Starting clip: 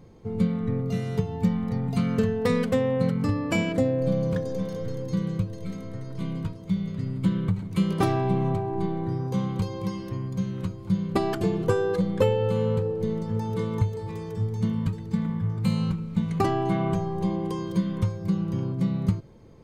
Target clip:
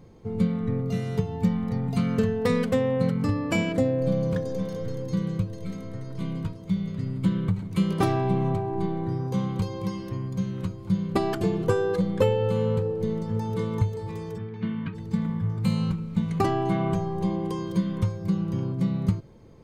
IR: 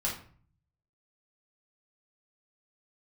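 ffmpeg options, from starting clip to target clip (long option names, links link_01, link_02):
-filter_complex "[0:a]asplit=3[link_01][link_02][link_03];[link_01]afade=type=out:start_time=14.37:duration=0.02[link_04];[link_02]highpass=190,equalizer=frequency=520:width_type=q:width=4:gain=-7,equalizer=frequency=820:width_type=q:width=4:gain=-5,equalizer=frequency=1600:width_type=q:width=4:gain=7,equalizer=frequency=2400:width_type=q:width=4:gain=6,lowpass=frequency=3500:width=0.5412,lowpass=frequency=3500:width=1.3066,afade=type=in:start_time=14.37:duration=0.02,afade=type=out:start_time=14.94:duration=0.02[link_05];[link_03]afade=type=in:start_time=14.94:duration=0.02[link_06];[link_04][link_05][link_06]amix=inputs=3:normalize=0"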